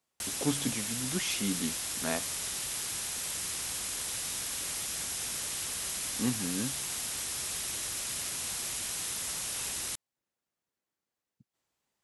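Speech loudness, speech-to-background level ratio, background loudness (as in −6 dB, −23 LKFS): −35.5 LKFS, −2.5 dB, −33.0 LKFS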